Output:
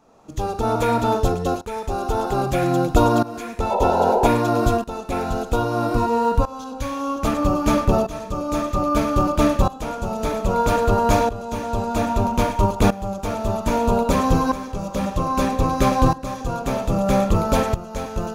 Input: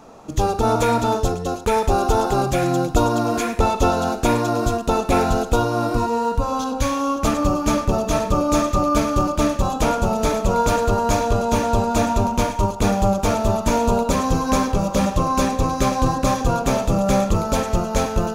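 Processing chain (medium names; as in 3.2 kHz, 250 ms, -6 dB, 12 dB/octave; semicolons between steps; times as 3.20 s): painted sound noise, 3.70–4.28 s, 370–1000 Hz -17 dBFS; tremolo saw up 0.62 Hz, depth 85%; dynamic bell 6.6 kHz, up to -6 dB, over -45 dBFS, Q 1; trim +3 dB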